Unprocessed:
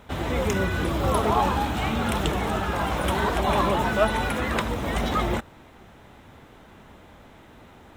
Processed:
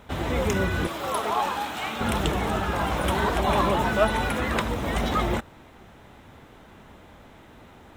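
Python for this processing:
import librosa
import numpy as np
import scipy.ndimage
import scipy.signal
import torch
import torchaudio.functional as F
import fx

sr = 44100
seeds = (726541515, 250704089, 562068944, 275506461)

y = fx.highpass(x, sr, hz=790.0, slope=6, at=(0.87, 2.01))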